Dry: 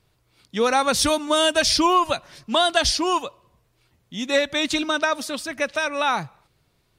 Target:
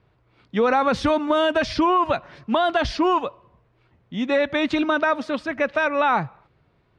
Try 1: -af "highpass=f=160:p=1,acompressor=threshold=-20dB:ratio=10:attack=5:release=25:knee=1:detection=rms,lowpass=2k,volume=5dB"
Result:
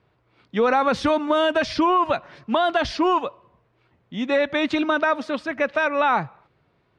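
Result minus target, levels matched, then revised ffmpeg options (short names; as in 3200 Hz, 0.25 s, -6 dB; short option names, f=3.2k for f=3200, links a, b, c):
125 Hz band -3.0 dB
-af "highpass=f=47:p=1,acompressor=threshold=-20dB:ratio=10:attack=5:release=25:knee=1:detection=rms,lowpass=2k,volume=5dB"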